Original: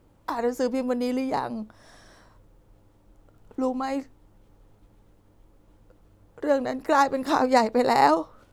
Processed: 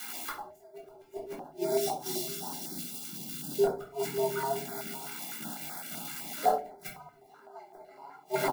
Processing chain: zero-crossing glitches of -23 dBFS; word length cut 8-bit, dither none; comb 1.5 ms, depth 88%; frequency shift +140 Hz; 1.56–3.64 s: high-order bell 1.2 kHz -11.5 dB 2.3 oct; feedback delay 550 ms, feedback 16%, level -8.5 dB; inverted gate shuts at -16 dBFS, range -36 dB; treble shelf 2.8 kHz -11 dB; simulated room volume 320 m³, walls furnished, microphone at 3.8 m; step-sequenced notch 7.9 Hz 610–2800 Hz

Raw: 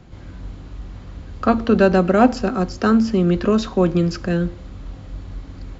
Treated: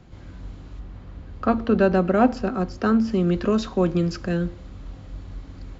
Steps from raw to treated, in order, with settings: 0.79–3.08 s: treble shelf 4.1 kHz -> 5.6 kHz -10.5 dB; trim -4 dB

